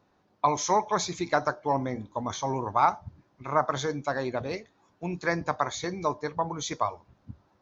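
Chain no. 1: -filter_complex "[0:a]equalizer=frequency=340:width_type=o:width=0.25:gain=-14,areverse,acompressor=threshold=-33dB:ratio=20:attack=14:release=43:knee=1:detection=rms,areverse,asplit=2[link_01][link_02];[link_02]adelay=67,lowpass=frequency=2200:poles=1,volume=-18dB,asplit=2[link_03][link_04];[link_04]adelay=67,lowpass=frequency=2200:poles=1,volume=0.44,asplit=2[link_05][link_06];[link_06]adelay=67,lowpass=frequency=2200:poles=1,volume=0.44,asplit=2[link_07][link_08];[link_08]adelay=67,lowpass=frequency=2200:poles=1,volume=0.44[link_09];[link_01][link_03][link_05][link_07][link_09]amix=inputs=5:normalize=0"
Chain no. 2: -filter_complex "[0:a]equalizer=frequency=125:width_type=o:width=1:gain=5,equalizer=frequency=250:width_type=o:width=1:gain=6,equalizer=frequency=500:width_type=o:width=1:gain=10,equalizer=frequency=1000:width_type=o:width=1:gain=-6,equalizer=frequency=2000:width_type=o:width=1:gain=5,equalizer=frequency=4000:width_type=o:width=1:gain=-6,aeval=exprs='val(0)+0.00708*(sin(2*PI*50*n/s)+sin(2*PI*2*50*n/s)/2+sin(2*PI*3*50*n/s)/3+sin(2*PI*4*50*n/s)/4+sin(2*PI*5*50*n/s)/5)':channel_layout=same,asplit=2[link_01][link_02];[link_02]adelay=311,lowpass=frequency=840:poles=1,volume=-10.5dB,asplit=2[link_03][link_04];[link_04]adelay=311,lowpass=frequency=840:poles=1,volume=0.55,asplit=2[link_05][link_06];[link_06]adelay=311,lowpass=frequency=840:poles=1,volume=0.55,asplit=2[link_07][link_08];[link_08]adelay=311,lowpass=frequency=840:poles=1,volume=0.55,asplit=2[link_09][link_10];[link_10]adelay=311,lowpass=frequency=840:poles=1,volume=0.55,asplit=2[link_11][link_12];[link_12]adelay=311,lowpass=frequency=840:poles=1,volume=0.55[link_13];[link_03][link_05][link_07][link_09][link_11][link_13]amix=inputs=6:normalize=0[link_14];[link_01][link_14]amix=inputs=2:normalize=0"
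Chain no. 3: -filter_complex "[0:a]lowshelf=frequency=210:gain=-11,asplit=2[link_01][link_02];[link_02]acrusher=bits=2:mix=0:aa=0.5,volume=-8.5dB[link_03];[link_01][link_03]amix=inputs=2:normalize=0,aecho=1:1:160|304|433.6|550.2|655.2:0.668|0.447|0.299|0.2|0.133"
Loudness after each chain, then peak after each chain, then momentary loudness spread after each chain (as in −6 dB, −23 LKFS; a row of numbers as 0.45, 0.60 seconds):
−36.5, −24.5, −26.5 LKFS; −20.5, −5.5, −7.0 dBFS; 8, 12, 10 LU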